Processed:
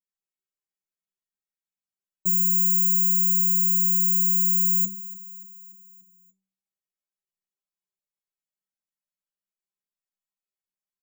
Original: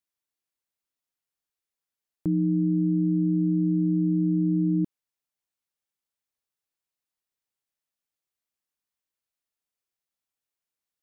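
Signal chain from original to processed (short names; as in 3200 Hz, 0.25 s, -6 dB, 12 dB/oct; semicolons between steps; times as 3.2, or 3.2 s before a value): low shelf 230 Hz +8.5 dB; careless resampling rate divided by 6×, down filtered, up zero stuff; metallic resonator 190 Hz, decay 0.5 s, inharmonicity 0.008; feedback echo 0.29 s, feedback 57%, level -17.5 dB; gain +4 dB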